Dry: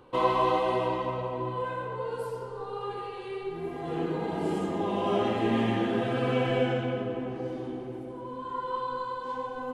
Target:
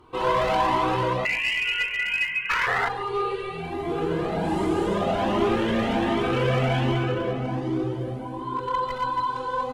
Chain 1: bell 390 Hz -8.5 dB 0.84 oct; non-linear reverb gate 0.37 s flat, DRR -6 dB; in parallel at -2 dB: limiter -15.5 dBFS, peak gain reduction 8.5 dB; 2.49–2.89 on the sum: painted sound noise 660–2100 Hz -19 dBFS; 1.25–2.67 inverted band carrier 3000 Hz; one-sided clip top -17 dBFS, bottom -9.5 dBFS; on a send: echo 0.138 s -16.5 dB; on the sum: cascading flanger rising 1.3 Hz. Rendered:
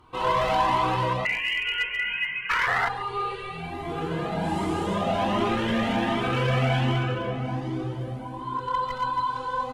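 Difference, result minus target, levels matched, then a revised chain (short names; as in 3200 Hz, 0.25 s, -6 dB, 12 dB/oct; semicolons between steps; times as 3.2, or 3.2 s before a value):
500 Hz band -2.5 dB
non-linear reverb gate 0.37 s flat, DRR -6 dB; in parallel at -2 dB: limiter -15.5 dBFS, peak gain reduction 9.5 dB; 2.49–2.89 on the sum: painted sound noise 660–2100 Hz -19 dBFS; 1.25–2.67 inverted band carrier 3000 Hz; one-sided clip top -17 dBFS, bottom -9.5 dBFS; on a send: echo 0.138 s -16.5 dB; on the sum: cascading flanger rising 1.3 Hz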